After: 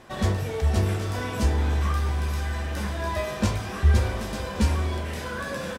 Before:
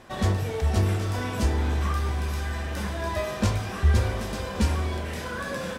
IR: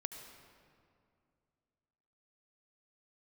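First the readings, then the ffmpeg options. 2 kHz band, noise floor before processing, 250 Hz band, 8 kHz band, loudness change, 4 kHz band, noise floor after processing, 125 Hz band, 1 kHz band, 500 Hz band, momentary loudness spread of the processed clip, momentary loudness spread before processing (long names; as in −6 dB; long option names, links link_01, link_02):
+0.5 dB, −34 dBFS, +0.5 dB, 0.0 dB, +0.5 dB, 0.0 dB, −34 dBFS, +0.5 dB, 0.0 dB, 0.0 dB, 8 LU, 7 LU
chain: -filter_complex "[0:a]asplit=2[link_01][link_02];[link_02]adelay=14,volume=-12.5dB[link_03];[link_01][link_03]amix=inputs=2:normalize=0"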